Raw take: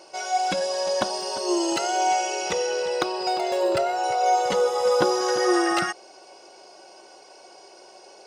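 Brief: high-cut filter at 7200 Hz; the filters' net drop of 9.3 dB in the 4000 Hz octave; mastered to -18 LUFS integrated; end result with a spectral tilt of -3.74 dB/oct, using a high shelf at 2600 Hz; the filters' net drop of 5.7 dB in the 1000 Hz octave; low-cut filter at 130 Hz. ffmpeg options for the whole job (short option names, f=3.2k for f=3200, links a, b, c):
-af "highpass=130,lowpass=7.2k,equalizer=f=1k:t=o:g=-8.5,highshelf=f=2.6k:g=-4,equalizer=f=4k:t=o:g=-8,volume=9dB"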